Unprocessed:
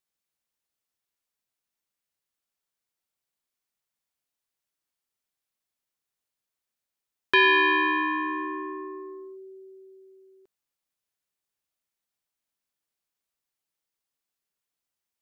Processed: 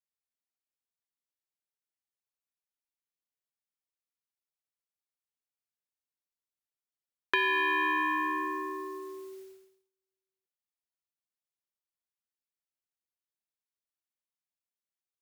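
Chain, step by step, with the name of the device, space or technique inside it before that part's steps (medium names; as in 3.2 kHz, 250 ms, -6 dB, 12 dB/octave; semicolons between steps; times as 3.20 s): baby monitor (band-pass 350–3600 Hz; compression 10:1, threshold -24 dBFS, peak gain reduction 8.5 dB; white noise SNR 22 dB; gate -47 dBFS, range -39 dB)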